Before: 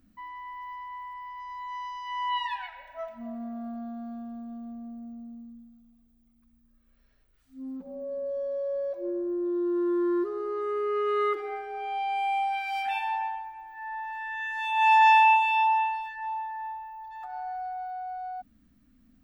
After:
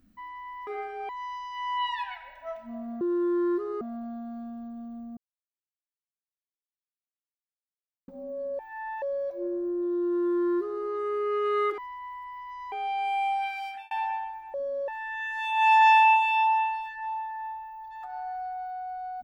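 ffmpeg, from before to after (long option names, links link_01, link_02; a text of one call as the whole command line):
ffmpeg -i in.wav -filter_complex "[0:a]asplit=14[link_01][link_02][link_03][link_04][link_05][link_06][link_07][link_08][link_09][link_10][link_11][link_12][link_13][link_14];[link_01]atrim=end=0.672[link_15];[link_02]atrim=start=11.408:end=11.832[link_16];[link_03]atrim=start=1.608:end=3.532[link_17];[link_04]atrim=start=9.668:end=10.472[link_18];[link_05]atrim=start=3.528:end=4.89,asetpts=PTS-STARTPTS,afade=type=out:start_time=1.358:duration=0.004:curve=hsin[link_19];[link_06]atrim=start=4.89:end=7.8,asetpts=PTS-STARTPTS,volume=0[link_20];[link_07]atrim=start=7.8:end=8.312,asetpts=PTS-STARTPTS,afade=type=in:duration=0.004:curve=hsin[link_21];[link_08]atrim=start=13.648:end=14.082[link_22];[link_09]atrim=start=8.648:end=11.412[link_23];[link_10]atrim=start=0.668:end=1.612[link_24];[link_11]atrim=start=11.828:end=13.02,asetpts=PTS-STARTPTS,afade=type=out:start_time=0.732:duration=0.46[link_25];[link_12]atrim=start=13.02:end=13.652,asetpts=PTS-STARTPTS,afade=type=in:duration=0.004:curve=hsin[link_26];[link_13]atrim=start=8.308:end=8.652[link_27];[link_14]atrim=start=14.078[link_28];[link_15][link_16]acrossfade=duration=0.004:curve1=hsin:curve2=hsin[link_29];[link_29][link_17]acrossfade=duration=0.004:curve1=hsin:curve2=hsin[link_30];[link_30][link_18]acrossfade=duration=0.004:curve1=hsin:curve2=hsin[link_31];[link_19][link_20][link_21]concat=n=3:v=0:a=1[link_32];[link_31][link_32]acrossfade=duration=0.004:curve1=hsin:curve2=hsin[link_33];[link_33][link_22]acrossfade=duration=0.004:curve1=hsin:curve2=hsin[link_34];[link_34][link_23]acrossfade=duration=0.004:curve1=hsin:curve2=hsin[link_35];[link_35][link_24]acrossfade=duration=0.004:curve1=hsin:curve2=hsin[link_36];[link_25][link_26]concat=n=2:v=0:a=1[link_37];[link_36][link_37]acrossfade=duration=0.004:curve1=hsin:curve2=hsin[link_38];[link_38][link_27]acrossfade=duration=0.004:curve1=hsin:curve2=hsin[link_39];[link_39][link_28]acrossfade=duration=0.004:curve1=hsin:curve2=hsin" out.wav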